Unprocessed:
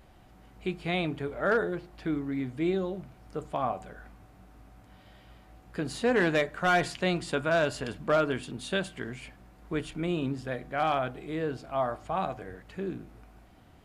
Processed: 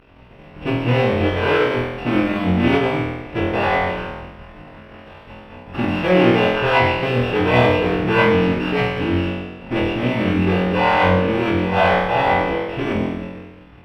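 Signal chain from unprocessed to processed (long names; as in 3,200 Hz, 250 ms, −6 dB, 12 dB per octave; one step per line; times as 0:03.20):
samples sorted by size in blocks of 16 samples
low-shelf EQ 150 Hz −2.5 dB
in parallel at −8 dB: fuzz pedal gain 45 dB, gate −52 dBFS
on the sum: high-frequency loss of the air 420 metres
flutter between parallel walls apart 4.1 metres, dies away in 1.1 s
phase-vocoder pitch shift with formants kept −5.5 semitones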